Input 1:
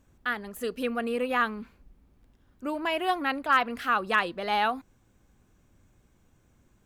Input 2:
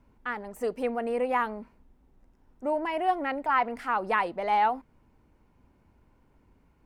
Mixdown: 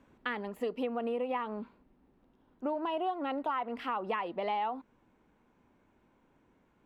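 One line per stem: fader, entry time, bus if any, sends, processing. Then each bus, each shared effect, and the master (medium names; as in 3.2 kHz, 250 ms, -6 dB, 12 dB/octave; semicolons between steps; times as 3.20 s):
+3.0 dB, 0.00 s, no send, peaking EQ 12 kHz +6 dB 2.5 oct; compression, threshold -26 dBFS, peak gain reduction 10 dB; auto duck -8 dB, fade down 0.75 s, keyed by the second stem
-2.0 dB, 0.00 s, no send, none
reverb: none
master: three-band isolator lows -14 dB, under 170 Hz, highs -21 dB, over 3.5 kHz; compression 6:1, threshold -30 dBFS, peak gain reduction 9.5 dB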